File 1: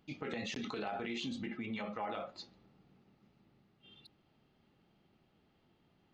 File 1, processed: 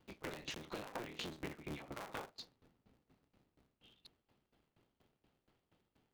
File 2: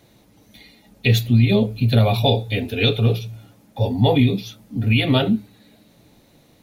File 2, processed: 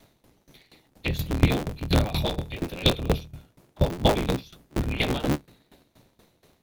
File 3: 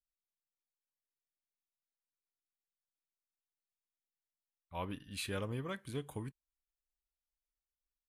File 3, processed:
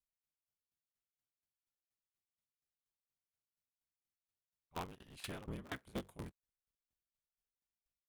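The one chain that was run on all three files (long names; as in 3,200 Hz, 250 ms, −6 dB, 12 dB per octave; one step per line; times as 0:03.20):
sub-harmonics by changed cycles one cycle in 3, inverted
tremolo with a ramp in dB decaying 4.2 Hz, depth 19 dB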